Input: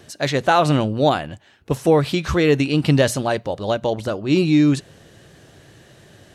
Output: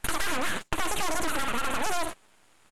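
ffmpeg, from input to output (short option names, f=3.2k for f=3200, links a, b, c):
-filter_complex "[0:a]asplit=2[a][b];[b]adelay=22,volume=-9dB[c];[a][c]amix=inputs=2:normalize=0,aecho=1:1:119|238:0.126|0.0327,asplit=2[d][e];[e]highpass=f=720:p=1,volume=23dB,asoftclip=type=tanh:threshold=-3dB[f];[d][f]amix=inputs=2:normalize=0,lowpass=f=2.3k:p=1,volume=-6dB,acrossover=split=120[g][h];[h]acompressor=threshold=-18dB:ratio=2[i];[g][i]amix=inputs=2:normalize=0,aeval=exprs='0.531*(cos(1*acos(clip(val(0)/0.531,-1,1)))-cos(1*PI/2))+0.0473*(cos(5*acos(clip(val(0)/0.531,-1,1)))-cos(5*PI/2))+0.0473*(cos(7*acos(clip(val(0)/0.531,-1,1)))-cos(7*PI/2))+0.15*(cos(8*acos(clip(val(0)/0.531,-1,1)))-cos(8*PI/2))':c=same,agate=range=-26dB:threshold=-29dB:ratio=16:detection=peak,aresample=11025,asoftclip=type=tanh:threshold=-13dB,aresample=44100,acompressor=threshold=-28dB:ratio=10,acrossover=split=2200[j][k];[j]aeval=exprs='abs(val(0))':c=same[l];[l][k]amix=inputs=2:normalize=0,asetrate=103194,aresample=44100,volume=5dB"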